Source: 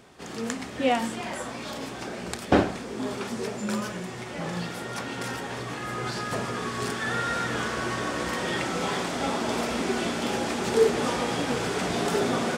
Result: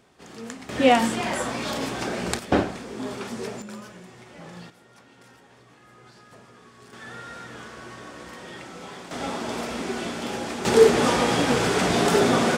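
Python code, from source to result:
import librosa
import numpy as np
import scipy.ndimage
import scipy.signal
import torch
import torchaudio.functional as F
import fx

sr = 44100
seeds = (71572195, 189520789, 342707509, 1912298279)

y = fx.gain(x, sr, db=fx.steps((0.0, -6.0), (0.69, 6.5), (2.39, -1.0), (3.62, -10.0), (4.7, -19.5), (6.93, -11.5), (9.11, -2.5), (10.65, 6.0)))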